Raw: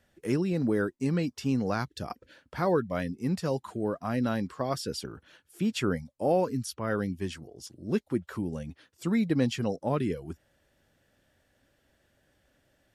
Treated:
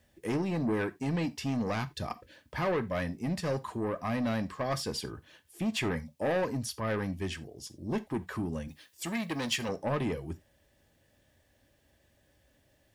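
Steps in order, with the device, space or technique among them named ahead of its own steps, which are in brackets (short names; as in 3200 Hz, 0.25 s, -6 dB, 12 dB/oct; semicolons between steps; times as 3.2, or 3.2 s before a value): open-reel tape (soft clip -27 dBFS, distortion -10 dB; bell 67 Hz +3.5 dB 0.99 oct; white noise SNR 45 dB); notch 1400 Hz, Q 5.4; 8.68–9.69 tilt +2.5 dB/oct; non-linear reverb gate 0.11 s falling, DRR 11.5 dB; dynamic EQ 1600 Hz, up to +6 dB, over -51 dBFS, Q 0.74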